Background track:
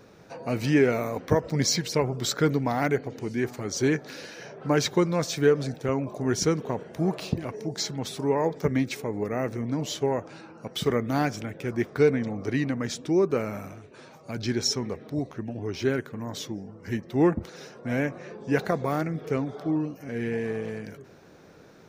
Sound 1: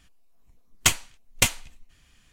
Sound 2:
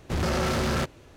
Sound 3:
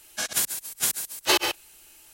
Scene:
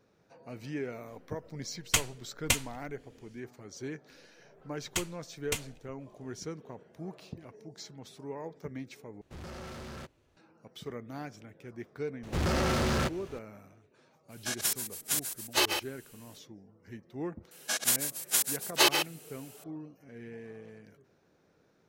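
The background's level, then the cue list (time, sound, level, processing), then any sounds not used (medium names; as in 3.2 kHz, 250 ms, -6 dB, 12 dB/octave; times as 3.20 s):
background track -16 dB
1.08 s: add 1 -6.5 dB
4.10 s: add 1 -13.5 dB
9.21 s: replace with 2 -18 dB
12.23 s: add 2 -3.5 dB + companding laws mixed up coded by mu
14.28 s: add 3 -5.5 dB, fades 0.05 s
17.51 s: add 3 -2 dB + high-pass 210 Hz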